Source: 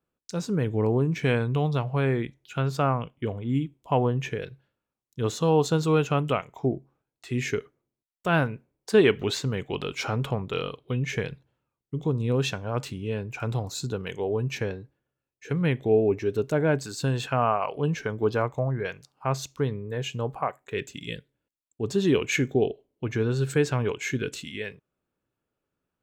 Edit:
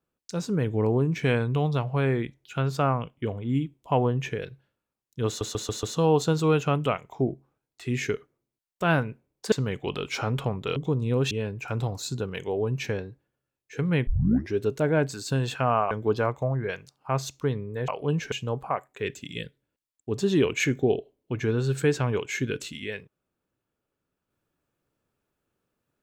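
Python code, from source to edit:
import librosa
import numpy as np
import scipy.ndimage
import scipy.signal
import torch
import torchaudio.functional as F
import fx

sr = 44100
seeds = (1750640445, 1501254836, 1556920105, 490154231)

y = fx.edit(x, sr, fx.stutter(start_s=5.27, slice_s=0.14, count=5),
    fx.cut(start_s=8.96, length_s=0.42),
    fx.cut(start_s=10.62, length_s=1.32),
    fx.cut(start_s=12.49, length_s=0.54),
    fx.tape_start(start_s=15.79, length_s=0.45),
    fx.move(start_s=17.63, length_s=0.44, to_s=20.04), tone=tone)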